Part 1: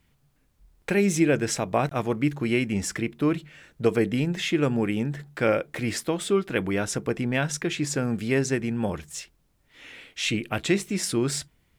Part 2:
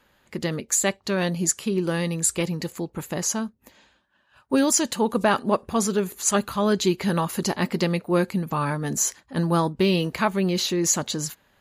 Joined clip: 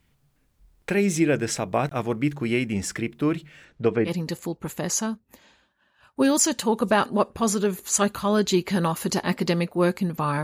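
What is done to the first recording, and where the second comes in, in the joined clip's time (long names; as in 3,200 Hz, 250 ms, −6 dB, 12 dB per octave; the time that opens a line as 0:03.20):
part 1
0:03.64–0:04.12: low-pass filter 6,600 Hz → 1,800 Hz
0:04.08: continue with part 2 from 0:02.41, crossfade 0.08 s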